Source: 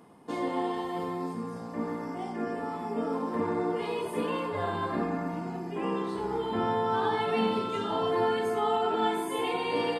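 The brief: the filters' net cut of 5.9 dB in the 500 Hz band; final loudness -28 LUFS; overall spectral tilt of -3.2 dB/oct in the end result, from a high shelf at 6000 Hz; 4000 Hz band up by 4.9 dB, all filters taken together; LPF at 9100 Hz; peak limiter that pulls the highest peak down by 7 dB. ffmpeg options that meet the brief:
-af "lowpass=9.1k,equalizer=f=500:t=o:g=-7.5,equalizer=f=4k:t=o:g=6,highshelf=f=6k:g=3,volume=6.5dB,alimiter=limit=-18dB:level=0:latency=1"

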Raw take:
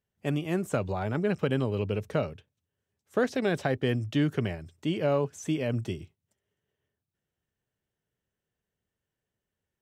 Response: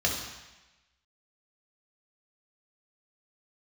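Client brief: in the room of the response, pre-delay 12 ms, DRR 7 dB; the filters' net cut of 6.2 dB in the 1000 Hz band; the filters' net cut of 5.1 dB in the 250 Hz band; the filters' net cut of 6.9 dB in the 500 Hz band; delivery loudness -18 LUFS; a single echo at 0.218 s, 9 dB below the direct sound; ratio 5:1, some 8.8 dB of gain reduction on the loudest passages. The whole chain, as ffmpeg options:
-filter_complex "[0:a]equalizer=f=250:t=o:g=-5,equalizer=f=500:t=o:g=-5.5,equalizer=f=1k:t=o:g=-6.5,acompressor=threshold=-36dB:ratio=5,aecho=1:1:218:0.355,asplit=2[a][b];[1:a]atrim=start_sample=2205,adelay=12[c];[b][c]afir=irnorm=-1:irlink=0,volume=-17.5dB[d];[a][d]amix=inputs=2:normalize=0,volume=21.5dB"

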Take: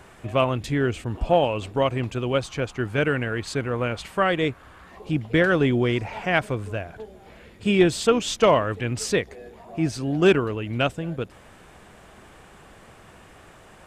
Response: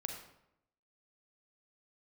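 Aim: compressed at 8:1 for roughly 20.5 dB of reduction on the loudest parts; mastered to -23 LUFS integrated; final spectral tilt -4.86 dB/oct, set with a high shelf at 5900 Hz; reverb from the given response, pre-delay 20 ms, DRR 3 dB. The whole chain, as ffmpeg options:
-filter_complex "[0:a]highshelf=f=5.9k:g=4.5,acompressor=threshold=-34dB:ratio=8,asplit=2[a][b];[1:a]atrim=start_sample=2205,adelay=20[c];[b][c]afir=irnorm=-1:irlink=0,volume=-2.5dB[d];[a][d]amix=inputs=2:normalize=0,volume=14.5dB"

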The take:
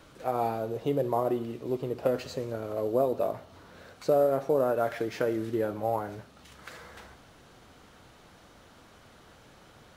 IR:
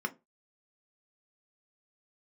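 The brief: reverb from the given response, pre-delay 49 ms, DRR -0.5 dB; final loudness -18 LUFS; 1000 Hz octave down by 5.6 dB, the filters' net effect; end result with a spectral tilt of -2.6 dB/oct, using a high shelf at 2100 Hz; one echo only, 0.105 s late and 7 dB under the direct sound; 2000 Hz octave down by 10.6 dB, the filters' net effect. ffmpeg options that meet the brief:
-filter_complex "[0:a]equalizer=f=1k:t=o:g=-6,equalizer=f=2k:t=o:g=-9,highshelf=f=2.1k:g=-6,aecho=1:1:105:0.447,asplit=2[a][b];[1:a]atrim=start_sample=2205,adelay=49[c];[b][c]afir=irnorm=-1:irlink=0,volume=-4dB[d];[a][d]amix=inputs=2:normalize=0,volume=10dB"

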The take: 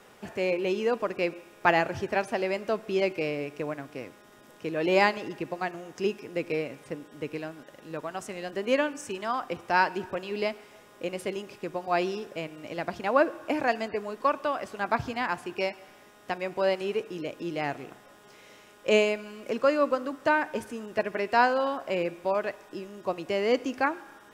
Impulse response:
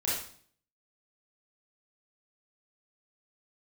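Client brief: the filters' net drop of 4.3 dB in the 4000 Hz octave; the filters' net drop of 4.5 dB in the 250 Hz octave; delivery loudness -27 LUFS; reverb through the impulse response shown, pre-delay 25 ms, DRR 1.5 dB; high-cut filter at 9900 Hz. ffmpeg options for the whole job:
-filter_complex "[0:a]lowpass=9.9k,equalizer=f=250:t=o:g=-6.5,equalizer=f=4k:t=o:g=-6.5,asplit=2[a][b];[1:a]atrim=start_sample=2205,adelay=25[c];[b][c]afir=irnorm=-1:irlink=0,volume=-8.5dB[d];[a][d]amix=inputs=2:normalize=0,volume=1dB"

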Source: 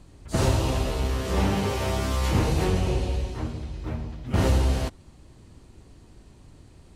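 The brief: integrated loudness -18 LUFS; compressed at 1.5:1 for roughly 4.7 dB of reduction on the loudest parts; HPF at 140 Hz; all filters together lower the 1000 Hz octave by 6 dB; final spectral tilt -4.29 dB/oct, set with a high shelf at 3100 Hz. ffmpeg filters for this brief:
-af "highpass=140,equalizer=f=1k:t=o:g=-8.5,highshelf=f=3.1k:g=5.5,acompressor=threshold=-35dB:ratio=1.5,volume=15dB"

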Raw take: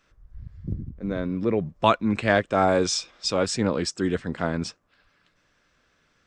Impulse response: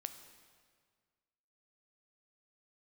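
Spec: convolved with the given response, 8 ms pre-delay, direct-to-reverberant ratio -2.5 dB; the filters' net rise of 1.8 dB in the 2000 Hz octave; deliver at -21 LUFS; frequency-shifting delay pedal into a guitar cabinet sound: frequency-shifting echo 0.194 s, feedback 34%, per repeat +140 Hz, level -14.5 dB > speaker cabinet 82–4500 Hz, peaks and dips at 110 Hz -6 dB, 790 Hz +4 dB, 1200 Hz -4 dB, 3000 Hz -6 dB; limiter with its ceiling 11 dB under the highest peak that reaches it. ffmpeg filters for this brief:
-filter_complex "[0:a]equalizer=f=2k:t=o:g=3.5,alimiter=limit=-14.5dB:level=0:latency=1,asplit=2[a][b];[1:a]atrim=start_sample=2205,adelay=8[c];[b][c]afir=irnorm=-1:irlink=0,volume=5.5dB[d];[a][d]amix=inputs=2:normalize=0,asplit=4[e][f][g][h];[f]adelay=194,afreqshift=140,volume=-14.5dB[i];[g]adelay=388,afreqshift=280,volume=-23.9dB[j];[h]adelay=582,afreqshift=420,volume=-33.2dB[k];[e][i][j][k]amix=inputs=4:normalize=0,highpass=82,equalizer=f=110:t=q:w=4:g=-6,equalizer=f=790:t=q:w=4:g=4,equalizer=f=1.2k:t=q:w=4:g=-4,equalizer=f=3k:t=q:w=4:g=-6,lowpass=f=4.5k:w=0.5412,lowpass=f=4.5k:w=1.3066,volume=3dB"

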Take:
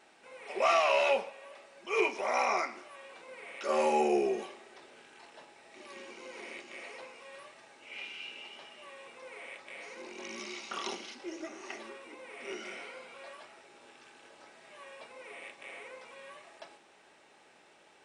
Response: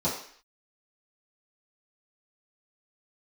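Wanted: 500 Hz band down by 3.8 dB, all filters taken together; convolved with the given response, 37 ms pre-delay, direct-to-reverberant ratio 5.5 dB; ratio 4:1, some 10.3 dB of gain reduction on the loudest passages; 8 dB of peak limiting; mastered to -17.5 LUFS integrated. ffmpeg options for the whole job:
-filter_complex "[0:a]equalizer=f=500:t=o:g=-5,acompressor=threshold=-36dB:ratio=4,alimiter=level_in=7dB:limit=-24dB:level=0:latency=1,volume=-7dB,asplit=2[a][b];[1:a]atrim=start_sample=2205,adelay=37[c];[b][c]afir=irnorm=-1:irlink=0,volume=-15.5dB[d];[a][d]amix=inputs=2:normalize=0,volume=26dB"

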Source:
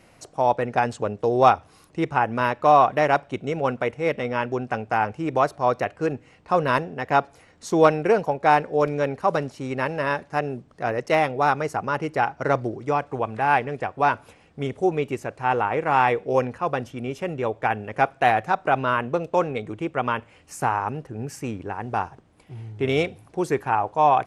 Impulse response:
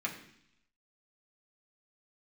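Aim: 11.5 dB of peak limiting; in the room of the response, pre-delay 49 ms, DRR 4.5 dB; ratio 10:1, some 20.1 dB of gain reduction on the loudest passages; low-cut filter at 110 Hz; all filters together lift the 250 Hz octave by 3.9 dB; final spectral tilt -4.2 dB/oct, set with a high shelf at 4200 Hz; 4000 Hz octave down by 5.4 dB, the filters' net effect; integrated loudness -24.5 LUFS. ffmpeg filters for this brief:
-filter_complex "[0:a]highpass=110,equalizer=f=250:t=o:g=5.5,equalizer=f=4k:t=o:g=-3.5,highshelf=f=4.2k:g=-8,acompressor=threshold=-31dB:ratio=10,alimiter=level_in=4dB:limit=-24dB:level=0:latency=1,volume=-4dB,asplit=2[a][b];[1:a]atrim=start_sample=2205,adelay=49[c];[b][c]afir=irnorm=-1:irlink=0,volume=-8.5dB[d];[a][d]amix=inputs=2:normalize=0,volume=14.5dB"

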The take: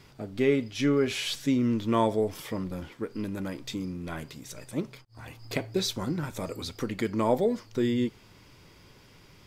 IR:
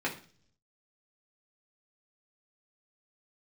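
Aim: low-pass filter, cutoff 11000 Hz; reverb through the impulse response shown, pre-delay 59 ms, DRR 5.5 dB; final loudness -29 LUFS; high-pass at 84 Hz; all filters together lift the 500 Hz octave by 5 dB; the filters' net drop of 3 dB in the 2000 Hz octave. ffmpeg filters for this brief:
-filter_complex "[0:a]highpass=84,lowpass=11k,equalizer=f=500:t=o:g=6.5,equalizer=f=2k:t=o:g=-4,asplit=2[a][b];[1:a]atrim=start_sample=2205,adelay=59[c];[b][c]afir=irnorm=-1:irlink=0,volume=-13dB[d];[a][d]amix=inputs=2:normalize=0,volume=-4dB"

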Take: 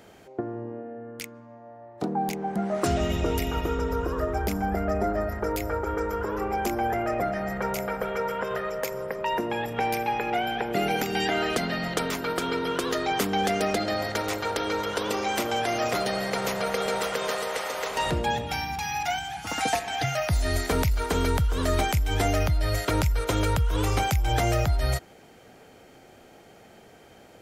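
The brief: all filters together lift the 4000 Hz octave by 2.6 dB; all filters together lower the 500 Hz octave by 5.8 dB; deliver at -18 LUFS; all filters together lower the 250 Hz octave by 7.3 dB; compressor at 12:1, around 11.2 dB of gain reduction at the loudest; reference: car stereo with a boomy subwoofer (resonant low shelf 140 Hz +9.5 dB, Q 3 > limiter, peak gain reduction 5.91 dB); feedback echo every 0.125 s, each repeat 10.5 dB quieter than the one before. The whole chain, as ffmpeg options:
-af "equalizer=f=250:t=o:g=-6,equalizer=f=500:t=o:g=-5,equalizer=f=4k:t=o:g=3.5,acompressor=threshold=-32dB:ratio=12,lowshelf=f=140:t=q:w=3:g=9.5,aecho=1:1:125|250|375:0.299|0.0896|0.0269,volume=13dB,alimiter=limit=-5.5dB:level=0:latency=1"

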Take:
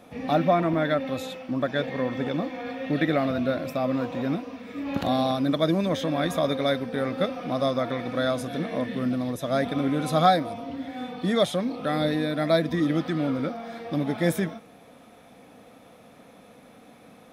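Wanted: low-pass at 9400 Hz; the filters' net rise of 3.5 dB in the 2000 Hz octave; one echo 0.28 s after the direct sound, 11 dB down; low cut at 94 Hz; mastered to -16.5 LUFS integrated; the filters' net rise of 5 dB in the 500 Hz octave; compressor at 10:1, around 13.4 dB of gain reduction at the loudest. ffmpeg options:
-af "highpass=94,lowpass=9.4k,equalizer=f=500:t=o:g=6,equalizer=f=2k:t=o:g=4,acompressor=threshold=-25dB:ratio=10,aecho=1:1:280:0.282,volume=13.5dB"

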